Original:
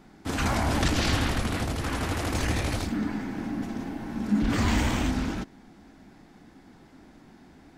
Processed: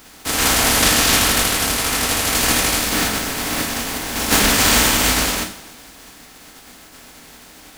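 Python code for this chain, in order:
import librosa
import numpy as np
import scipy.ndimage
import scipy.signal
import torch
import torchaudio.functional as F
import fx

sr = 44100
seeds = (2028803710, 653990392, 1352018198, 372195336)

y = fx.spec_flatten(x, sr, power=0.3)
y = fx.rev_double_slope(y, sr, seeds[0], early_s=0.47, late_s=2.0, knee_db=-20, drr_db=1.5)
y = F.gain(torch.from_numpy(y), 7.0).numpy()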